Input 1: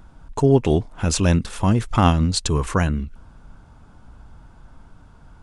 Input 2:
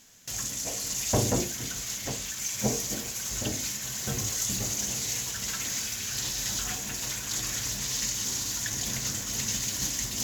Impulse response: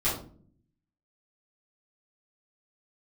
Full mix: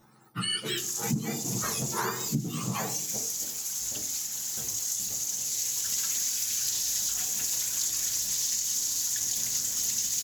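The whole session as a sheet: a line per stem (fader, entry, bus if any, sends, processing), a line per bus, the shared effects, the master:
+2.0 dB, 0.00 s, send −17.5 dB, frequency axis turned over on the octave scale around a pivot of 1,100 Hz; high-shelf EQ 2,600 Hz −9.5 dB; string-ensemble chorus
+1.5 dB, 0.50 s, no send, bass and treble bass −5 dB, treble +14 dB; automatic ducking −12 dB, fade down 0.85 s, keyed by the first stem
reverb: on, RT60 0.50 s, pre-delay 5 ms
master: downward compressor 6 to 1, threshold −27 dBFS, peak gain reduction 16.5 dB

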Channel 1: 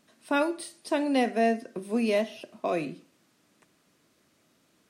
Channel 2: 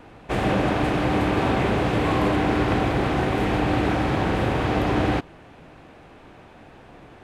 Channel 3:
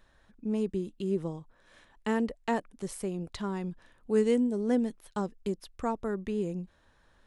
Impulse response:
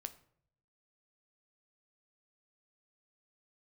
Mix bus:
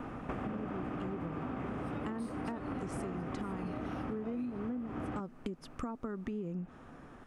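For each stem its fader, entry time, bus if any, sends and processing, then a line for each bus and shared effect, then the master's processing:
−7.0 dB, 1.60 s, no bus, no send, harmonic and percussive parts rebalanced percussive −9 dB; brickwall limiter −30.5 dBFS, peak gain reduction 16 dB
+1.5 dB, 0.00 s, bus A, no send, high-shelf EQ 3,100 Hz −11 dB; automatic ducking −11 dB, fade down 1.55 s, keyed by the third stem
+3.0 dB, 0.00 s, bus A, no send, treble cut that deepens with the level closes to 2,000 Hz, closed at −23.5 dBFS
bus A: 0.0 dB, thirty-one-band graphic EQ 160 Hz +5 dB, 250 Hz +10 dB, 1,250 Hz +9 dB, 4,000 Hz −9 dB; downward compressor 3 to 1, threshold −33 dBFS, peak gain reduction 16 dB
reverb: not used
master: downward compressor, threshold −35 dBFS, peak gain reduction 9 dB

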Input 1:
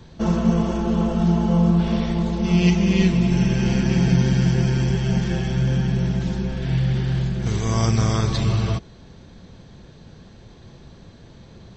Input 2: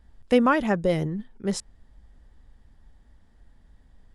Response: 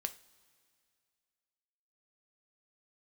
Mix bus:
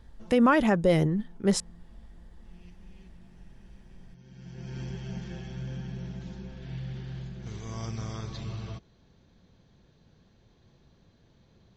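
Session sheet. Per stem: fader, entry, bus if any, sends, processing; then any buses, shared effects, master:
−15.5 dB, 0.00 s, no send, elliptic low-pass filter 7,100 Hz; automatic ducking −22 dB, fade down 0.45 s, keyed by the second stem
+3.0 dB, 0.00 s, no send, brickwall limiter −16 dBFS, peak gain reduction 9 dB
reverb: not used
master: no processing

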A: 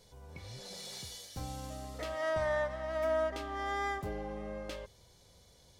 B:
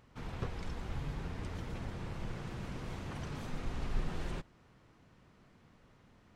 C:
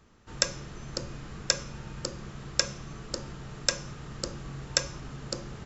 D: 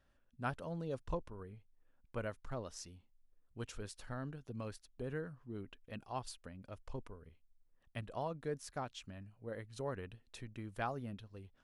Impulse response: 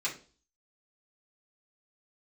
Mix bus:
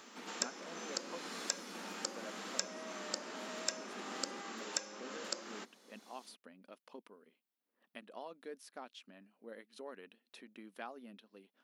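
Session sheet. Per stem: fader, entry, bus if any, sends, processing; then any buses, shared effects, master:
−7.5 dB, 0.55 s, no send, downward compressor, threshold −42 dBFS, peak gain reduction 12.5 dB
−4.5 dB, 0.00 s, no send, no processing
+2.5 dB, 0.00 s, no send, low-shelf EQ 440 Hz −11 dB; downward compressor 2.5 to 1, threshold −39 dBFS, peak gain reduction 14 dB
−7.5 dB, 0.00 s, no send, parametric band 7,300 Hz −10 dB 1 octave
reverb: not used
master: linear-phase brick-wall high-pass 190 Hz; multiband upward and downward compressor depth 40%

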